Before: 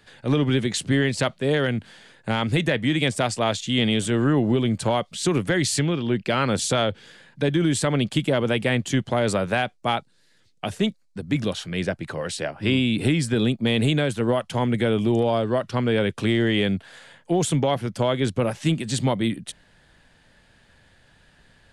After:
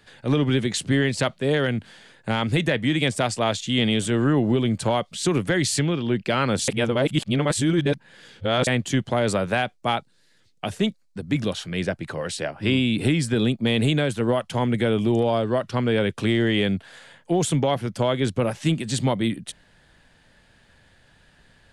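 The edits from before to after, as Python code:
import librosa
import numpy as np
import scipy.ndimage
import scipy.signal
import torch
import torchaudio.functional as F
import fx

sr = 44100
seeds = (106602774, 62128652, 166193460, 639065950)

y = fx.edit(x, sr, fx.reverse_span(start_s=6.68, length_s=1.99), tone=tone)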